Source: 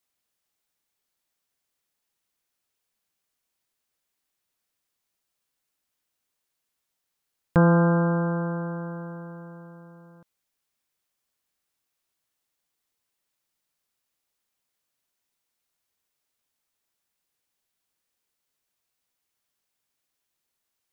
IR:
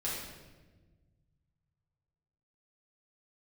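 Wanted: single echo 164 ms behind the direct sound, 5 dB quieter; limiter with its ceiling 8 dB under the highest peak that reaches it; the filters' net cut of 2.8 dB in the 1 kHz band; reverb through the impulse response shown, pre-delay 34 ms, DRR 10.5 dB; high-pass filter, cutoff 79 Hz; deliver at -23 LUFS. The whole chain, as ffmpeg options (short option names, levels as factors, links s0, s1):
-filter_complex "[0:a]highpass=79,equalizer=f=1000:t=o:g=-3.5,alimiter=limit=0.141:level=0:latency=1,aecho=1:1:164:0.562,asplit=2[s0][s1];[1:a]atrim=start_sample=2205,adelay=34[s2];[s1][s2]afir=irnorm=-1:irlink=0,volume=0.188[s3];[s0][s3]amix=inputs=2:normalize=0,volume=1.26"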